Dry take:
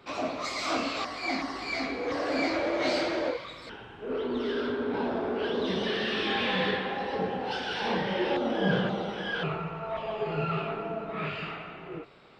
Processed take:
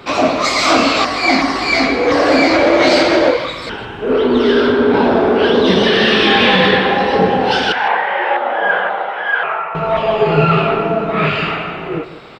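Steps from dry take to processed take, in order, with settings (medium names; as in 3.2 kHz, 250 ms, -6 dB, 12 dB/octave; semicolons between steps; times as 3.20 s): 7.72–9.75 s: Chebyshev band-pass 740–2000 Hz, order 2; echo from a far wall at 27 m, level -14 dB; loudness maximiser +19 dB; trim -1 dB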